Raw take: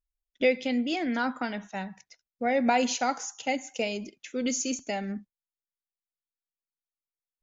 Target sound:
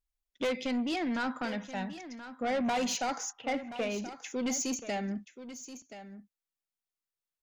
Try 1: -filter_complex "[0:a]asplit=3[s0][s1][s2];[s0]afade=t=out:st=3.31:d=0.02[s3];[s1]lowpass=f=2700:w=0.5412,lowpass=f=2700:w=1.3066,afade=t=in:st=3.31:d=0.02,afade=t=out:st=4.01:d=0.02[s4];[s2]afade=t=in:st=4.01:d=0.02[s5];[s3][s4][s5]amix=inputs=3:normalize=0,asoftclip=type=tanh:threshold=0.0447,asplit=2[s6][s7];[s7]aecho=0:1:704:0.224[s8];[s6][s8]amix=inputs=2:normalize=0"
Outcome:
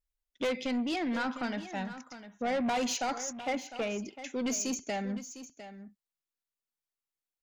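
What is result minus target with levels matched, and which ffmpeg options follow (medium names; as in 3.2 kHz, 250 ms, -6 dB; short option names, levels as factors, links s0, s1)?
echo 324 ms early
-filter_complex "[0:a]asplit=3[s0][s1][s2];[s0]afade=t=out:st=3.31:d=0.02[s3];[s1]lowpass=f=2700:w=0.5412,lowpass=f=2700:w=1.3066,afade=t=in:st=3.31:d=0.02,afade=t=out:st=4.01:d=0.02[s4];[s2]afade=t=in:st=4.01:d=0.02[s5];[s3][s4][s5]amix=inputs=3:normalize=0,asoftclip=type=tanh:threshold=0.0447,asplit=2[s6][s7];[s7]aecho=0:1:1028:0.224[s8];[s6][s8]amix=inputs=2:normalize=0"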